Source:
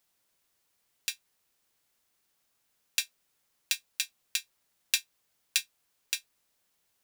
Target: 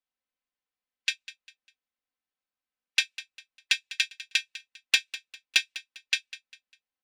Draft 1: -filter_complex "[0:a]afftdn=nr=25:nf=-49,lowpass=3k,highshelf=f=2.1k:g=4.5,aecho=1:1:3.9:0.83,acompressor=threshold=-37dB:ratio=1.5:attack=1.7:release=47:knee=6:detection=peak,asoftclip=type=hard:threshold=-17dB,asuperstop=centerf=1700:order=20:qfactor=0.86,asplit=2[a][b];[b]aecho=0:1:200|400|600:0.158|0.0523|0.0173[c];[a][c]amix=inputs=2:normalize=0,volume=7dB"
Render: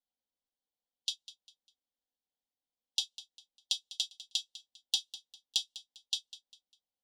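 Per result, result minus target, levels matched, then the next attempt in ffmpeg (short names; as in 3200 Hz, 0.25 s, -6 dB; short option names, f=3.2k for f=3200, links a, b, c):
2000 Hz band -18.0 dB; compressor: peak gain reduction +7 dB
-filter_complex "[0:a]afftdn=nr=25:nf=-49,lowpass=3k,highshelf=f=2.1k:g=4.5,aecho=1:1:3.9:0.83,acompressor=threshold=-37dB:ratio=1.5:attack=1.7:release=47:knee=6:detection=peak,asoftclip=type=hard:threshold=-17dB,asplit=2[a][b];[b]aecho=0:1:200|400|600:0.158|0.0523|0.0173[c];[a][c]amix=inputs=2:normalize=0,volume=7dB"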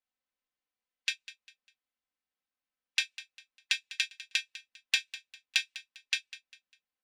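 compressor: peak gain reduction +7 dB
-filter_complex "[0:a]afftdn=nr=25:nf=-49,lowpass=3k,highshelf=f=2.1k:g=4.5,aecho=1:1:3.9:0.83,asoftclip=type=hard:threshold=-17dB,asplit=2[a][b];[b]aecho=0:1:200|400|600:0.158|0.0523|0.0173[c];[a][c]amix=inputs=2:normalize=0,volume=7dB"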